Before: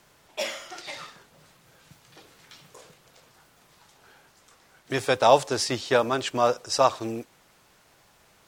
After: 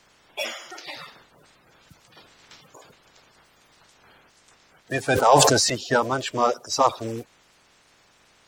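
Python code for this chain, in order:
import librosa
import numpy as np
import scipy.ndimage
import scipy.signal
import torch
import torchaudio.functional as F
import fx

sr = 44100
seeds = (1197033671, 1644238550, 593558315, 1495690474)

y = fx.spec_quant(x, sr, step_db=30)
y = fx.sustainer(y, sr, db_per_s=29.0, at=(5.08, 5.7))
y = y * librosa.db_to_amplitude(1.5)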